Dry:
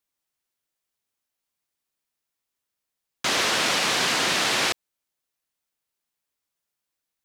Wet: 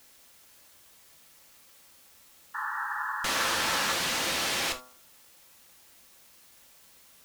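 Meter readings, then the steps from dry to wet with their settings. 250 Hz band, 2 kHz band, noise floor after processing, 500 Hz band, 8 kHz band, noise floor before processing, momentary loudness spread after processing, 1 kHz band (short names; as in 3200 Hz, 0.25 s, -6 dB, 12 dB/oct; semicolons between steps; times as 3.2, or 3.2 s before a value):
-7.0 dB, -4.5 dB, -57 dBFS, -6.5 dB, -4.5 dB, -84 dBFS, 9 LU, -3.0 dB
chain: de-hum 126.4 Hz, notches 11; tube stage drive 31 dB, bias 0.8; in parallel at -10 dB: requantised 8-bit, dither triangular; on the sum: painted sound noise, 2.54–3.93, 820–1900 Hz -34 dBFS; non-linear reverb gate 0.1 s falling, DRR 5.5 dB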